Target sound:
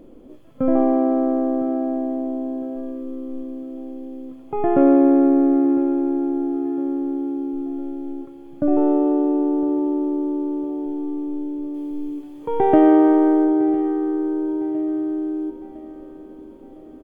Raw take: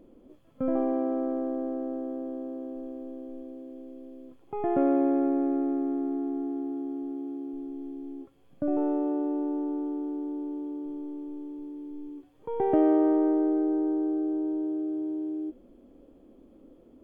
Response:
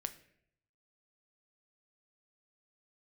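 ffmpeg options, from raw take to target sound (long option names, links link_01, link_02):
-filter_complex "[0:a]asettb=1/sr,asplit=3[link_01][link_02][link_03];[link_01]atrim=end=11.744[link_04];[link_02]atrim=start=11.74:end=13.45,asetpts=PTS-STARTPTS,afade=type=in:duration=0.004:curve=qsin,afade=type=out:start_time=1.706:duration=0.004:curve=qsin,highshelf=frequency=2100:gain=7.5[link_05];[link_03]atrim=start=13.446[link_06];[link_04][link_05]acrossfade=duration=0.004:curve1=hsin:curve2=qsin[link_07];[link_07][link_06]acrossfade=duration=0.004:curve1=qsin:curve2=hsin,aecho=1:1:1007|2014|3021|4028:0.158|0.0713|0.0321|0.0144,asplit=2[link_08][link_09];[1:a]atrim=start_sample=2205[link_10];[link_09][link_10]afir=irnorm=-1:irlink=0,volume=7dB[link_11];[link_08][link_11]amix=inputs=2:normalize=0"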